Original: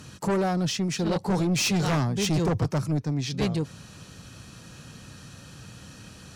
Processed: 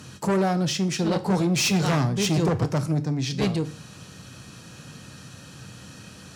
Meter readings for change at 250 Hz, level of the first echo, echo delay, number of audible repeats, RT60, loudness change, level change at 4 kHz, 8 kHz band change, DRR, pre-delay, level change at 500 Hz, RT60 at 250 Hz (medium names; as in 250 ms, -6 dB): +2.5 dB, no echo, no echo, no echo, 0.40 s, +2.0 dB, +2.5 dB, +2.5 dB, 11.0 dB, 6 ms, +2.5 dB, 0.40 s